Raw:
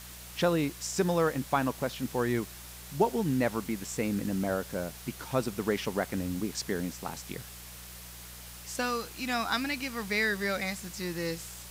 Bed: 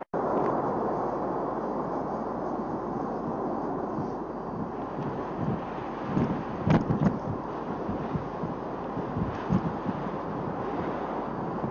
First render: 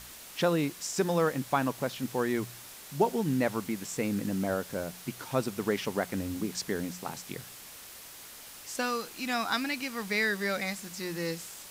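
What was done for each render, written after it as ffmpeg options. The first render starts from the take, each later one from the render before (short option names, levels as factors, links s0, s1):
-af "bandreject=f=60:t=h:w=4,bandreject=f=120:t=h:w=4,bandreject=f=180:t=h:w=4"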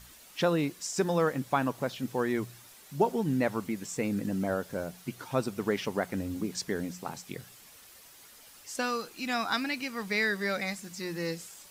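-af "afftdn=nr=8:nf=-48"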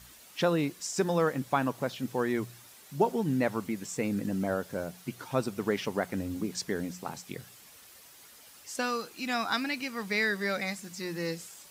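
-af "highpass=52"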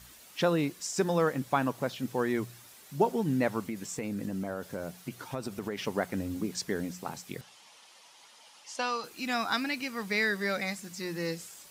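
-filter_complex "[0:a]asettb=1/sr,asplit=3[s0][s1][s2];[s0]atrim=end=3.674[s3];[s1]atrim=start=3.67:end=5.82,asetpts=PTS-STARTPTS,afade=t=in:d=0.004:c=qsin,afade=t=out:st=2.146:d=0.004:c=qsin,acompressor=threshold=0.0316:ratio=6:attack=3.2:release=140:knee=1:detection=peak[s4];[s2]atrim=start=5.816[s5];[s3][s4]acrossfade=d=0.004:c1=hsin:c2=qsin[s6];[s6][s5]acrossfade=d=0.004:c1=qsin:c2=hsin,asettb=1/sr,asplit=3[s7][s8][s9];[s7]atrim=end=7.414[s10];[s8]atrim=start=7.41:end=9.04,asetpts=PTS-STARTPTS,afade=t=in:d=0.004:c=qsin,afade=t=out:st=1.626:d=0.004:c=qsin,highpass=280,equalizer=f=280:t=q:w=4:g=-5,equalizer=f=400:t=q:w=4:g=-7,equalizer=f=900:t=q:w=4:g=8,equalizer=f=1600:t=q:w=4:g=-4,equalizer=f=3100:t=q:w=4:g=4,equalizer=f=7900:t=q:w=4:g=-7,lowpass=f=8900:w=0.5412,lowpass=f=8900:w=1.3066[s11];[s9]atrim=start=9.036[s12];[s10][s11]acrossfade=d=0.004:c1=hsin:c2=qsin[s13];[s13][s12]acrossfade=d=0.004:c1=qsin:c2=hsin"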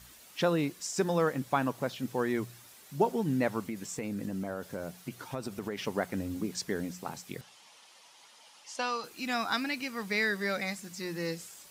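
-af "volume=0.891"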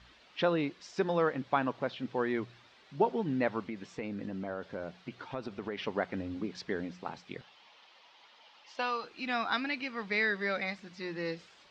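-af "lowpass=f=4100:w=0.5412,lowpass=f=4100:w=1.3066,equalizer=f=130:w=0.8:g=-5.5"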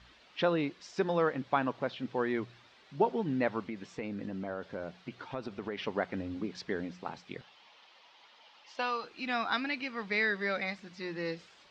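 -af anull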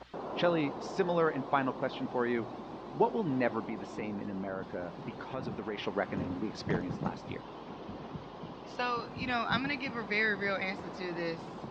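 -filter_complex "[1:a]volume=0.251[s0];[0:a][s0]amix=inputs=2:normalize=0"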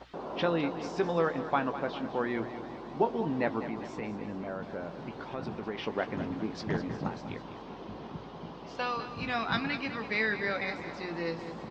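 -filter_complex "[0:a]asplit=2[s0][s1];[s1]adelay=18,volume=0.282[s2];[s0][s2]amix=inputs=2:normalize=0,aecho=1:1:202|404|606|808|1010|1212:0.251|0.133|0.0706|0.0374|0.0198|0.0105"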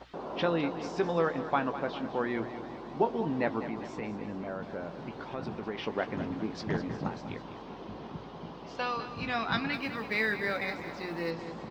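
-filter_complex "[0:a]asettb=1/sr,asplit=3[s0][s1][s2];[s0]atrim=end=9.734[s3];[s1]atrim=start=9.73:end=11.31,asetpts=PTS-STARTPTS,afade=t=in:d=0.004:c=qsin,afade=t=out:st=1.576:d=0.004:c=qsin,acrusher=bits=8:mode=log:mix=0:aa=0.000001[s4];[s2]atrim=start=11.306[s5];[s3][s4]acrossfade=d=0.004:c1=hsin:c2=qsin[s6];[s6][s5]acrossfade=d=0.004:c1=qsin:c2=hsin"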